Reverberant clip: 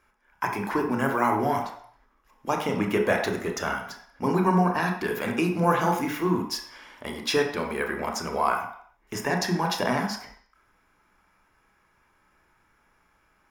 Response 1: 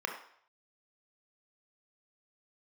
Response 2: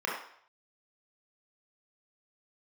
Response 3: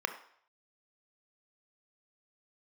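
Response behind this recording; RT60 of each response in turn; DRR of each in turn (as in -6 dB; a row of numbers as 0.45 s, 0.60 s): 1; 0.60 s, 0.60 s, 0.60 s; 2.0 dB, -5.0 dB, 7.5 dB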